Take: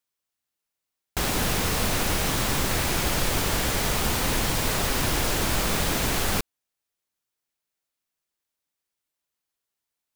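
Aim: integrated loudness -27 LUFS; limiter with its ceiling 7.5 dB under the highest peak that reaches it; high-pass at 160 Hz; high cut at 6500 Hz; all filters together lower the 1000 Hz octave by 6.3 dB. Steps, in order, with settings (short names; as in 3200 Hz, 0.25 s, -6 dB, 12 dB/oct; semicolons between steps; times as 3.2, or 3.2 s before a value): HPF 160 Hz; LPF 6500 Hz; bell 1000 Hz -8.5 dB; gain +4.5 dB; limiter -18.5 dBFS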